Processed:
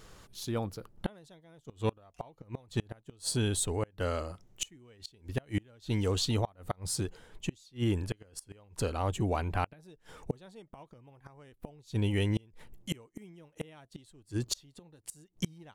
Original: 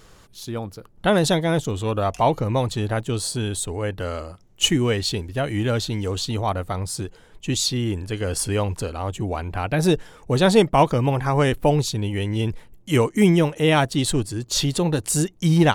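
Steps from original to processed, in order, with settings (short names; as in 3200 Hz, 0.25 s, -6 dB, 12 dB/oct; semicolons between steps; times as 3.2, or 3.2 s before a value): flipped gate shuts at -14 dBFS, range -32 dB; gain -4 dB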